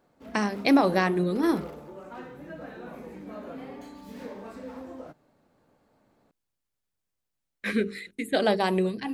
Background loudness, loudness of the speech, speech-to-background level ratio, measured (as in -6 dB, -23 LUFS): -42.0 LUFS, -25.5 LUFS, 16.5 dB